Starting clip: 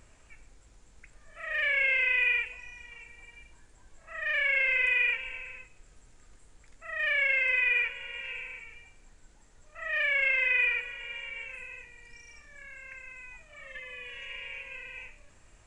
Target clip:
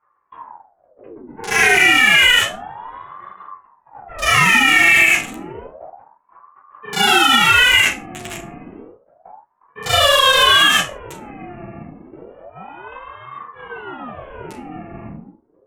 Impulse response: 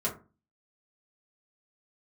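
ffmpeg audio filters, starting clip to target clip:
-filter_complex "[0:a]agate=range=-30dB:threshold=-50dB:ratio=16:detection=peak,acrossover=split=110|1100[a][b][c];[c]aeval=exprs='val(0)*gte(abs(val(0)),0.0282)':c=same[d];[a][b][d]amix=inputs=3:normalize=0[e];[1:a]atrim=start_sample=2205,atrim=end_sample=4410,asetrate=23814,aresample=44100[f];[e][f]afir=irnorm=-1:irlink=0,alimiter=level_in=13.5dB:limit=-1dB:release=50:level=0:latency=1,aeval=exprs='val(0)*sin(2*PI*650*n/s+650*0.75/0.3*sin(2*PI*0.3*n/s))':c=same"

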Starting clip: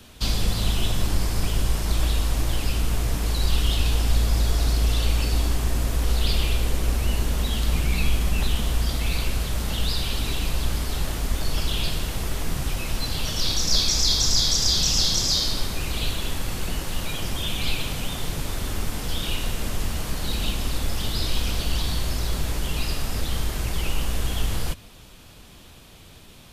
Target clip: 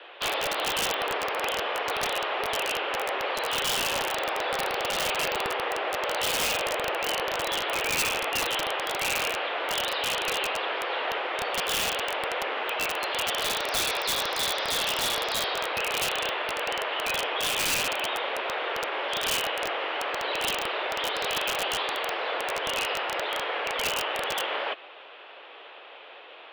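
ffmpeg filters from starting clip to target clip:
-af "highpass=f=370:t=q:w=0.5412,highpass=f=370:t=q:w=1.307,lowpass=f=3k:t=q:w=0.5176,lowpass=f=3k:t=q:w=0.7071,lowpass=f=3k:t=q:w=1.932,afreqshift=100,aeval=exprs='(mod(23.7*val(0)+1,2)-1)/23.7':c=same,volume=8dB"

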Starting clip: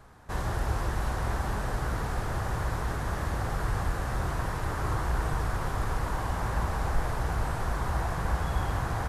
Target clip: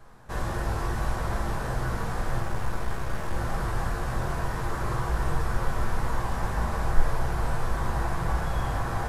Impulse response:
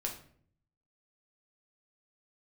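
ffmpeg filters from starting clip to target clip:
-filter_complex "[0:a]asettb=1/sr,asplit=3[a][b][c];[a]atrim=end=2.404[d];[b]atrim=start=2.4:end=3.35,asetpts=PTS-STARTPTS,afade=t=in:d=0.004:c=qsin,afade=t=out:st=0.946:d=0.004:c=qsin,aeval=exprs='clip(val(0),-1,0.015)':c=same[e];[c]atrim=start=3.346[f];[d][e]acrossfade=d=0.004:c1=hsin:c2=qsin[g];[g][f]acrossfade=d=0.004:c1=qsin:c2=hsin[h];[1:a]atrim=start_sample=2205,atrim=end_sample=3528[i];[h][i]afir=irnorm=-1:irlink=0"

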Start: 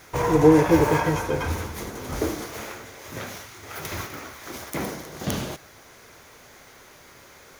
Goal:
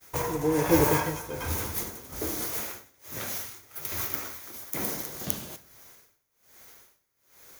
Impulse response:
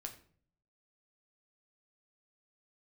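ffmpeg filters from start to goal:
-filter_complex "[0:a]aemphasis=mode=production:type=50fm,tremolo=f=1.2:d=0.67,agate=range=-33dB:threshold=-36dB:ratio=3:detection=peak,asplit=2[a][b];[1:a]atrim=start_sample=2205,asetrate=35280,aresample=44100[c];[b][c]afir=irnorm=-1:irlink=0,volume=-5dB[d];[a][d]amix=inputs=2:normalize=0,volume=-5.5dB"

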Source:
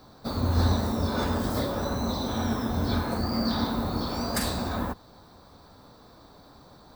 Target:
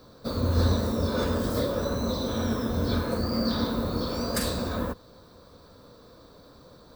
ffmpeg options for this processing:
-af "equalizer=f=500:t=o:w=0.33:g=8,equalizer=f=800:t=o:w=0.33:g=-10,equalizer=f=2k:t=o:w=0.33:g=-3"

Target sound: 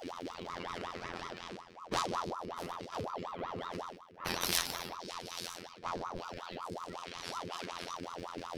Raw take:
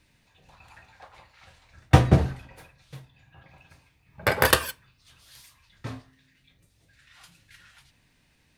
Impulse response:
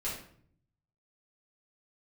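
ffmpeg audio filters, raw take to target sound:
-filter_complex "[1:a]atrim=start_sample=2205,afade=t=out:st=0.3:d=0.01,atrim=end_sample=13671[a];[0:a][a]afir=irnorm=-1:irlink=0,flanger=delay=6.7:depth=8:regen=-57:speed=0.36:shape=triangular,equalizer=f=125:t=o:w=0.33:g=12,equalizer=f=200:t=o:w=0.33:g=10,equalizer=f=400:t=o:w=0.33:g=-12,equalizer=f=1.6k:t=o:w=0.33:g=-7,equalizer=f=5k:t=o:w=0.33:g=7,afftfilt=real='hypot(re,im)*cos(PI*b)':imag='0':win_size=2048:overlap=0.75,areverse,acompressor=mode=upward:threshold=-28dB:ratio=2.5,areverse,highshelf=f=7.4k:g=-9,acrossover=split=2900[b][c];[b]acompressor=threshold=-38dB:ratio=6[d];[d][c]amix=inputs=2:normalize=0,aeval=exprs='val(0)*sin(2*PI*730*n/s+730*0.65/5.4*sin(2*PI*5.4*n/s))':c=same,volume=5.5dB"

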